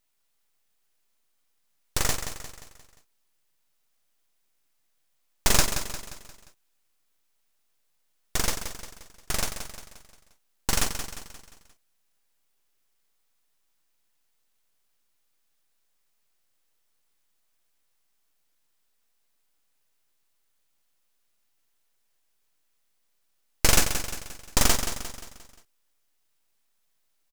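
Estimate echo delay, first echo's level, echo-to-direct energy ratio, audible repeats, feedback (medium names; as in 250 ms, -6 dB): 176 ms, -9.0 dB, -8.0 dB, 4, 47%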